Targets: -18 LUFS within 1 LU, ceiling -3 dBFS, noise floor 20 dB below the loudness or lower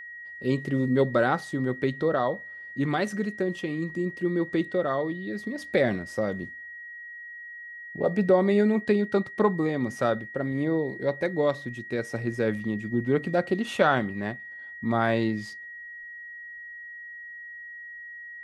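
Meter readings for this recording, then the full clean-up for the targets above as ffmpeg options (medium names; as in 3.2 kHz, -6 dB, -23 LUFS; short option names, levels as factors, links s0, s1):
steady tone 1.9 kHz; tone level -39 dBFS; loudness -27.0 LUFS; peak level -8.0 dBFS; loudness target -18.0 LUFS
-> -af "bandreject=f=1900:w=30"
-af "volume=2.82,alimiter=limit=0.708:level=0:latency=1"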